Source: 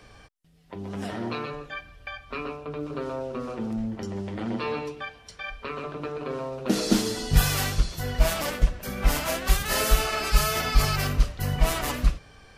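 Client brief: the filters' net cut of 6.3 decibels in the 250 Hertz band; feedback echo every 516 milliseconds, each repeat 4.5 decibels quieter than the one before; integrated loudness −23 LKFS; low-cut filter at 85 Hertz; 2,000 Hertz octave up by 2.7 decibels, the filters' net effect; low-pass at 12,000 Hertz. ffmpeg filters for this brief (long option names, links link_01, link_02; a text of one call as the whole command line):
ffmpeg -i in.wav -af "highpass=85,lowpass=12000,equalizer=frequency=250:width_type=o:gain=-8.5,equalizer=frequency=2000:width_type=o:gain=3.5,aecho=1:1:516|1032|1548|2064|2580|3096|3612|4128|4644:0.596|0.357|0.214|0.129|0.0772|0.0463|0.0278|0.0167|0.01,volume=4.5dB" out.wav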